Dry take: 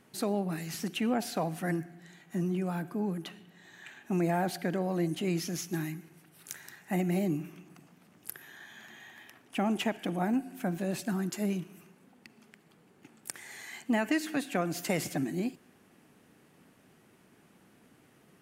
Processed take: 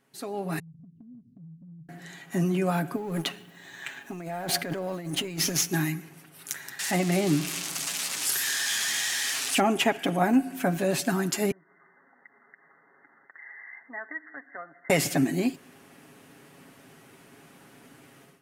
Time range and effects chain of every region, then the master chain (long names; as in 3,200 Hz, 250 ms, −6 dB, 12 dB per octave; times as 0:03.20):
0:00.59–0:01.89: inverse Chebyshev low-pass filter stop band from 750 Hz, stop band 70 dB + downward compressor, threshold −53 dBFS
0:02.96–0:05.69: mu-law and A-law mismatch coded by A + compressor whose output falls as the input rises −39 dBFS
0:06.79–0:09.60: spike at every zero crossing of −24.5 dBFS + low-pass filter 7,700 Hz
0:11.51–0:14.90: upward compression, threshold −34 dBFS + linear-phase brick-wall low-pass 2,100 Hz + first difference
whole clip: low-shelf EQ 340 Hz −5 dB; comb filter 7.3 ms, depth 46%; automatic gain control gain up to 16.5 dB; level −6.5 dB